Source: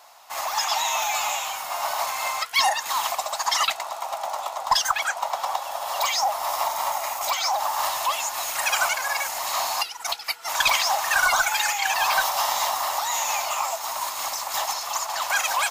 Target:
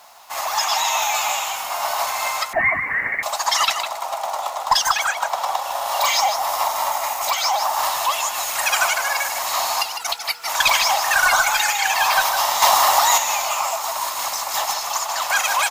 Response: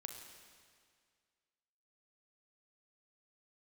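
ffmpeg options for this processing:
-filter_complex "[0:a]asettb=1/sr,asplit=3[link_01][link_02][link_03];[link_01]atrim=end=5.624[link_04];[link_02]atrim=start=5.62:end=6.2,asetpts=PTS-STARTPTS,afade=type=in:duration=0.004:curve=qsin,afade=type=out:start_time=0.576:duration=0.004:curve=qsin,asplit=2[link_05][link_06];[link_06]adelay=34,volume=-3.5dB[link_07];[link_05][link_07]amix=inputs=2:normalize=0,atrim=end_sample=25578[link_08];[link_03]atrim=start=6.196[link_09];[link_04][link_08]acrossfade=duration=0.004:curve1=hsin:curve2=qsin[link_10];[link_10][link_09]acrossfade=duration=0.004:curve1=qsin:curve2=hsin,aecho=1:1:154:0.398,asettb=1/sr,asplit=3[link_11][link_12][link_13];[link_11]atrim=end=2.534[link_14];[link_12]atrim=start=2.53:end=3.23,asetpts=PTS-STARTPTS,afade=type=in:duration=0.004:curve=qsin,afade=type=out:start_time=0.696:duration=0.004:curve=qsin,lowpass=frequency=2500:width_type=q:width=0.5098,lowpass=frequency=2500:width_type=q:width=0.6013,lowpass=frequency=2500:width_type=q:width=0.9,lowpass=frequency=2500:width_type=q:width=2.563,afreqshift=-2900[link_15];[link_13]atrim=start=3.226[link_16];[link_14][link_15]acrossfade=duration=0.004:curve1=hsin:curve2=qsin[link_17];[link_17][link_16]acrossfade=duration=0.004:curve1=qsin:curve2=hsin,acrusher=bits=8:mix=0:aa=0.5,asettb=1/sr,asplit=3[link_18][link_19][link_20];[link_18]atrim=end=12.624[link_21];[link_19]atrim=start=12.62:end=13.18,asetpts=PTS-STARTPTS,afade=type=in:duration=0.004:curve=qsin,afade=type=out:start_time=0.556:duration=0.004:curve=qsin,acontrast=66[link_22];[link_20]atrim=start=13.176[link_23];[link_21][link_22]acrossfade=duration=0.004:curve1=hsin:curve2=qsin[link_24];[link_24][link_23]acrossfade=duration=0.004:curve1=qsin:curve2=hsin,volume=3.5dB"

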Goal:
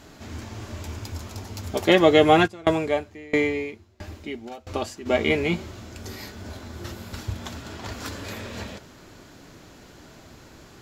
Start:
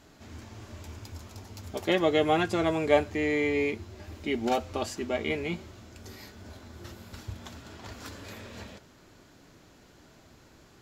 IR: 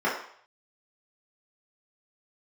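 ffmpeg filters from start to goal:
-filter_complex "[0:a]asplit=3[link_01][link_02][link_03];[link_01]afade=type=out:start_time=2.46:duration=0.02[link_04];[link_02]aeval=exprs='val(0)*pow(10,-26*if(lt(mod(1.5*n/s,1),2*abs(1.5)/1000),1-mod(1.5*n/s,1)/(2*abs(1.5)/1000),(mod(1.5*n/s,1)-2*abs(1.5)/1000)/(1-2*abs(1.5)/1000))/20)':channel_layout=same,afade=type=in:start_time=2.46:duration=0.02,afade=type=out:start_time=5.05:duration=0.02[link_05];[link_03]afade=type=in:start_time=5.05:duration=0.02[link_06];[link_04][link_05][link_06]amix=inputs=3:normalize=0,volume=8.5dB"

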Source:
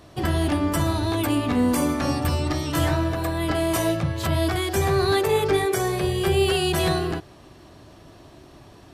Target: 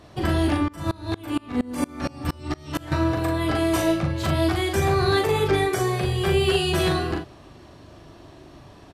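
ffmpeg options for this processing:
ffmpeg -i in.wav -filter_complex "[0:a]highshelf=frequency=8500:gain=-8.5,asplit=2[link_01][link_02];[link_02]adelay=40,volume=-4.5dB[link_03];[link_01][link_03]amix=inputs=2:normalize=0,asettb=1/sr,asplit=3[link_04][link_05][link_06];[link_04]atrim=end=0.684[link_07];[link_05]atrim=start=0.68:end=2.92,asetpts=PTS-STARTPTS,afade=type=in:duration=0.004:curve=qsin,afade=type=out:start_time=2.236:duration=0.004:curve=qsin,aeval=exprs='val(0)*pow(10,-27*if(lt(mod(-4.3*n/s,1),2*abs(-4.3)/1000),1-mod(-4.3*n/s,1)/(2*abs(-4.3)/1000),(mod(-4.3*n/s,1)-2*abs(-4.3)/1000)/(1-2*abs(-4.3)/1000))/20)':channel_layout=same[link_08];[link_06]atrim=start=2.916[link_09];[link_07][link_08]acrossfade=duration=0.004:curve1=hsin:curve2=qsin[link_10];[link_10][link_09]acrossfade=duration=0.004:curve1=qsin:curve2=hsin" out.wav

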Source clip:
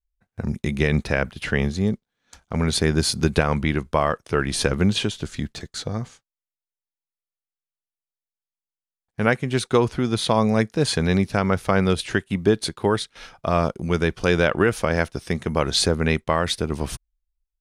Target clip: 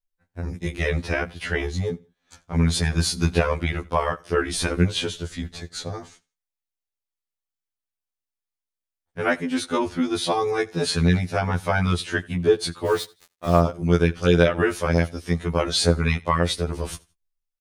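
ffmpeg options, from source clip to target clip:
ffmpeg -i in.wav -filter_complex "[0:a]asettb=1/sr,asplit=3[link_01][link_02][link_03];[link_01]atrim=end=12.864[link_04];[link_02]atrim=start=12.86:end=13.6,asetpts=PTS-STARTPTS,afade=type=in:duration=0.004:curve=qsin,afade=type=out:start_time=0.736:duration=0.004:curve=qsin,aeval=exprs='val(0)*gte(abs(val(0)),0.0299)':channel_layout=same[link_05];[link_03]atrim=start=13.596[link_06];[link_04][link_05]acrossfade=duration=0.004:curve1=hsin:curve2=qsin[link_07];[link_07][link_06]acrossfade=duration=0.004:curve1=qsin:curve2=hsin,aecho=1:1:84|168:0.0631|0.0177,afftfilt=real='re*2*eq(mod(b,4),0)':imag='im*2*eq(mod(b,4),0)':win_size=2048:overlap=0.75,volume=1dB" out.wav

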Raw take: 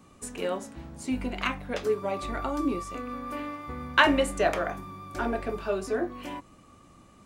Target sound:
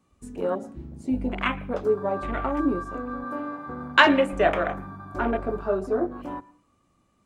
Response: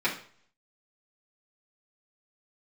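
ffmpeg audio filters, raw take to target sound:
-filter_complex "[0:a]afwtdn=0.0158,asettb=1/sr,asplit=3[link_01][link_02][link_03];[link_01]atrim=end=3.244[link_04];[link_02]atrim=start=3.24:end=4.33,asetpts=PTS-STARTPTS,afade=type=in:duration=0.004:curve=qsin,afade=type=out:start_time=1.086:duration=0.004:curve=qsin,highpass=130[link_05];[link_03]atrim=start=4.326[link_06];[link_04][link_05]acrossfade=duration=0.004:curve1=hsin:curve2=qsin[link_07];[link_07][link_06]acrossfade=duration=0.004:curve1=qsin:curve2=hsin,asplit=2[link_08][link_09];[1:a]atrim=start_sample=2205,adelay=108[link_10];[link_09][link_10]afir=irnorm=-1:irlink=0,volume=-31.5dB[link_11];[link_08][link_11]amix=inputs=2:normalize=0,volume=4dB"

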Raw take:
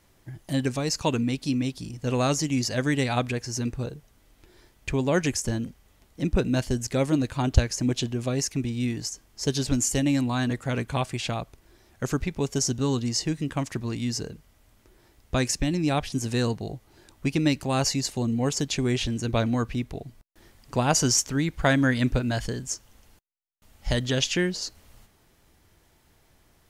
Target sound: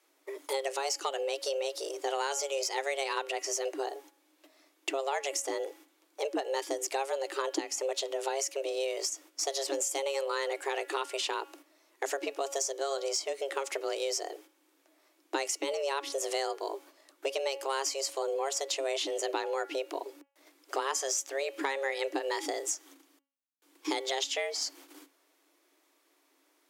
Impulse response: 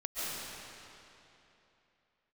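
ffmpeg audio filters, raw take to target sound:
-af "agate=range=-11dB:threshold=-51dB:ratio=16:detection=peak,lowshelf=frequency=370:gain=-8,bandreject=frequency=283.1:width_type=h:width=4,bandreject=frequency=566.2:width_type=h:width=4,bandreject=frequency=849.3:width_type=h:width=4,bandreject=frequency=1132.4:width_type=h:width=4,bandreject=frequency=1415.5:width_type=h:width=4,bandreject=frequency=1698.6:width_type=h:width=4,bandreject=frequency=1981.7:width_type=h:width=4,bandreject=frequency=2264.8:width_type=h:width=4,bandreject=frequency=2547.9:width_type=h:width=4,bandreject=frequency=2831:width_type=h:width=4,acompressor=threshold=-35dB:ratio=6,asoftclip=type=tanh:threshold=-24dB,afreqshift=270,volume=5.5dB"

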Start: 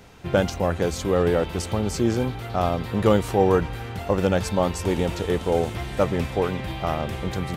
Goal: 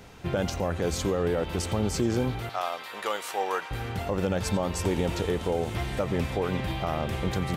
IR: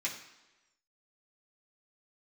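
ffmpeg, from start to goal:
-filter_complex "[0:a]asettb=1/sr,asplit=3[link_01][link_02][link_03];[link_01]atrim=end=2.494[link_04];[link_02]atrim=start=2.49:end=3.71,asetpts=PTS-STARTPTS,afade=type=in:duration=0.004:curve=qsin,afade=type=out:start_time=1.216:duration=0.004:curve=qsin,highpass=950[link_05];[link_03]atrim=start=3.706[link_06];[link_04][link_05]acrossfade=duration=0.004:curve1=hsin:curve2=qsin[link_07];[link_07][link_06]acrossfade=duration=0.004:curve1=qsin:curve2=hsin,alimiter=limit=-16.5dB:level=0:latency=1:release=116,asplit=2[link_08][link_09];[1:a]atrim=start_sample=2205,adelay=86[link_10];[link_09][link_10]afir=irnorm=-1:irlink=0,volume=-22.5dB[link_11];[link_08][link_11]amix=inputs=2:normalize=0"

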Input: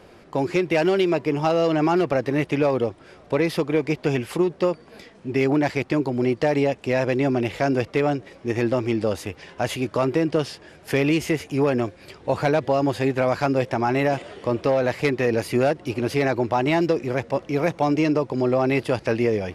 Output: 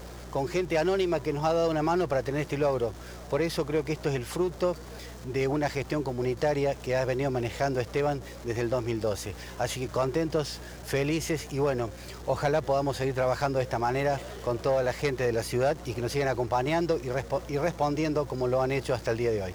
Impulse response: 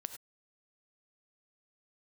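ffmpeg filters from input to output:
-af "aeval=exprs='val(0)+0.5*0.0141*sgn(val(0))':channel_layout=same,equalizer=frequency=250:width_type=o:width=0.67:gain=-9,equalizer=frequency=2500:width_type=o:width=0.67:gain=-5,equalizer=frequency=6300:width_type=o:width=0.67:gain=4,aeval=exprs='val(0)+0.0112*(sin(2*PI*60*n/s)+sin(2*PI*2*60*n/s)/2+sin(2*PI*3*60*n/s)/3+sin(2*PI*4*60*n/s)/4+sin(2*PI*5*60*n/s)/5)':channel_layout=same,volume=-4.5dB"

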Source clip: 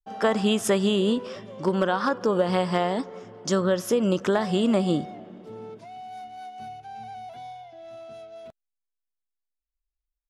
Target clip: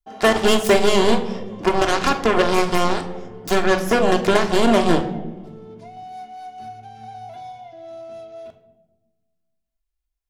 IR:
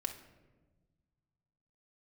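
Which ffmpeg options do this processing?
-filter_complex "[0:a]asettb=1/sr,asplit=3[link_01][link_02][link_03];[link_01]atrim=end=5.184[link_04];[link_02]atrim=start=5.18:end=5.97,asetpts=PTS-STARTPTS,afade=type=in:duration=0.004:curve=qsin,afade=type=out:start_time=0.786:duration=0.004:curve=qsin,acompressor=threshold=-42dB:ratio=6[link_05];[link_03]atrim=start=5.966[link_06];[link_04][link_05]acrossfade=duration=0.004:curve1=hsin:curve2=qsin[link_07];[link_07][link_06]acrossfade=duration=0.004:curve1=qsin:curve2=hsin,aeval=exprs='0.266*(cos(1*acos(clip(val(0)/0.266,-1,1)))-cos(1*PI/2))+0.0668*(cos(7*acos(clip(val(0)/0.266,-1,1)))-cos(7*PI/2))':channel_layout=same[link_08];[1:a]atrim=start_sample=2205,asetrate=57330,aresample=44100[link_09];[link_08][link_09]afir=irnorm=-1:irlink=0,volume=8dB"

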